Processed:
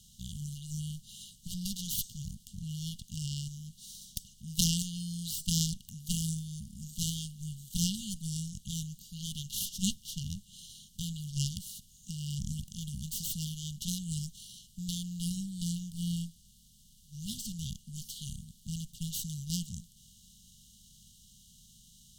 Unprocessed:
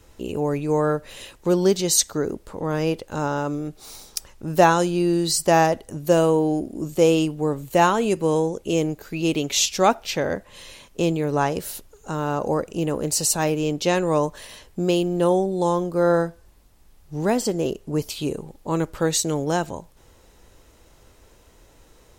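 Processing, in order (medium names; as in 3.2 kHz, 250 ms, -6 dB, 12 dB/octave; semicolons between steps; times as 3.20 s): spectral levelling over time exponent 0.6; Chebyshev shaper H 3 -8 dB, 4 -17 dB, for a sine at 0 dBFS; word length cut 12-bit, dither none; brick-wall FIR band-stop 230–2800 Hz; trim -3.5 dB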